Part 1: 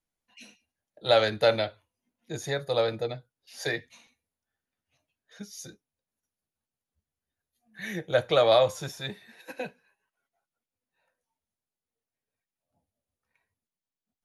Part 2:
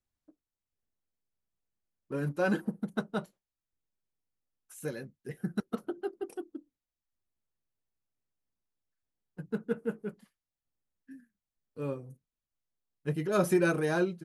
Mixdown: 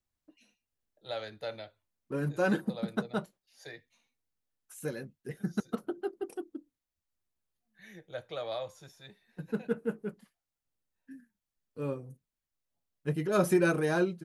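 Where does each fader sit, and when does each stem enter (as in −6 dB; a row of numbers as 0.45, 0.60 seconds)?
−16.5, +0.5 decibels; 0.00, 0.00 seconds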